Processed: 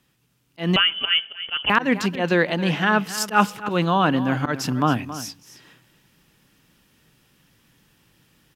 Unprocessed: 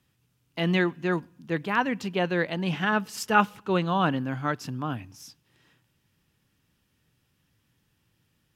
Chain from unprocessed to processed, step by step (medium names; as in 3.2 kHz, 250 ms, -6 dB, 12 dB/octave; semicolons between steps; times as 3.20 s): peaking EQ 88 Hz -11 dB 0.87 oct; in parallel at -1.5 dB: peak limiter -17.5 dBFS, peak gain reduction 9.5 dB; on the sum: slow attack 129 ms; gain riding within 3 dB 0.5 s; on a send: delay 273 ms -14 dB; 0.76–1.70 s: on the sum: frequency inversion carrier 3.2 kHz; trim +4 dB